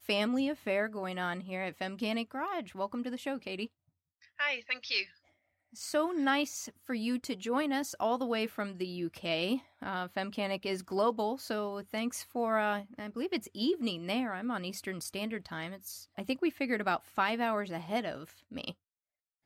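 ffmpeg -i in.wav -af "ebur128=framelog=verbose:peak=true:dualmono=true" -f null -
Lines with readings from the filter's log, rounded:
Integrated loudness:
  I:         -31.3 LUFS
  Threshold: -41.5 LUFS
Loudness range:
  LRA:         2.9 LU
  Threshold: -51.6 LUFS
  LRA low:   -33.3 LUFS
  LRA high:  -30.4 LUFS
True peak:
  Peak:      -17.2 dBFS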